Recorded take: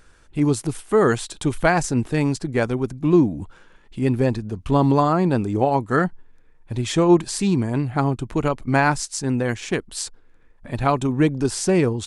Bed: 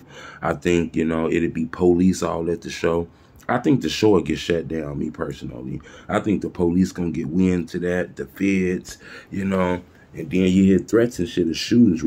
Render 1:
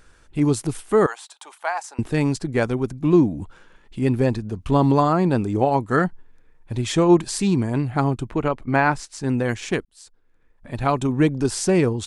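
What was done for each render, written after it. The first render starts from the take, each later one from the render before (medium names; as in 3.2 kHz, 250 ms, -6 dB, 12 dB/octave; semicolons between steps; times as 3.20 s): 1.06–1.99 s: ladder high-pass 720 Hz, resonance 50%; 8.29–9.22 s: tone controls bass -3 dB, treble -11 dB; 9.85–11.06 s: fade in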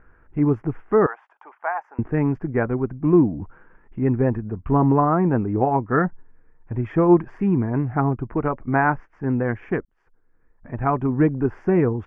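inverse Chebyshev low-pass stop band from 3.7 kHz, stop band 40 dB; band-stop 560 Hz, Q 13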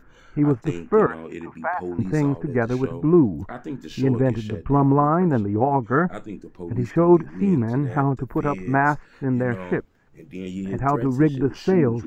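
add bed -14.5 dB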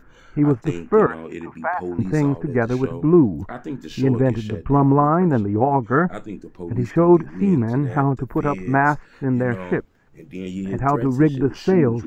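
trim +2 dB; peak limiter -3 dBFS, peak gain reduction 1 dB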